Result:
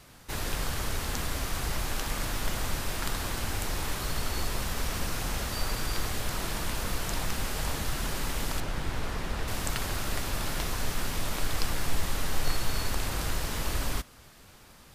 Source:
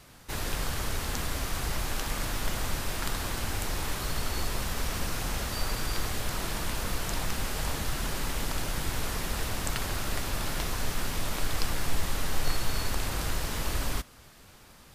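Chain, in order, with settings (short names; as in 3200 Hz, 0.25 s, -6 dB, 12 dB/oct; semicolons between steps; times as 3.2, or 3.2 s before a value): 8.6–9.48 LPF 2800 Hz 6 dB/oct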